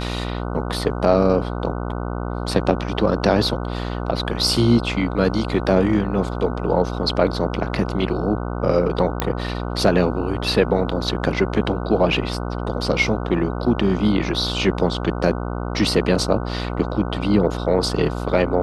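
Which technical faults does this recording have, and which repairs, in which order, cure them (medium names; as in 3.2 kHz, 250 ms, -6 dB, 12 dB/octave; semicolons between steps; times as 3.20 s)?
buzz 60 Hz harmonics 25 -26 dBFS
9.20 s: pop -6 dBFS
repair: de-click; de-hum 60 Hz, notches 25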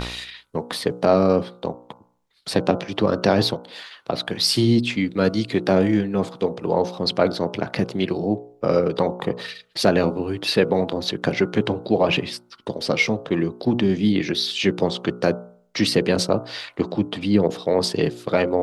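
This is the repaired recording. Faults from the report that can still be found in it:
nothing left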